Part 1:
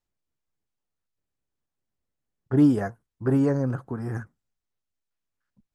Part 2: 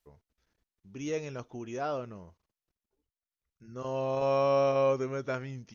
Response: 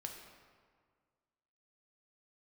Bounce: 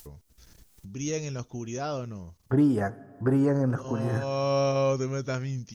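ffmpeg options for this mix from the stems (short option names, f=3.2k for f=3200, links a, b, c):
-filter_complex "[0:a]acompressor=threshold=-23dB:ratio=2.5,volume=1dB,asplit=3[a][b][c];[b]volume=-10.5dB[d];[1:a]bass=f=250:g=10,treble=f=4k:g=14,volume=0dB[e];[c]apad=whole_len=253303[f];[e][f]sidechaincompress=threshold=-33dB:ratio=3:attack=16:release=575[g];[2:a]atrim=start_sample=2205[h];[d][h]afir=irnorm=-1:irlink=0[i];[a][g][i]amix=inputs=3:normalize=0,acompressor=mode=upward:threshold=-38dB:ratio=2.5"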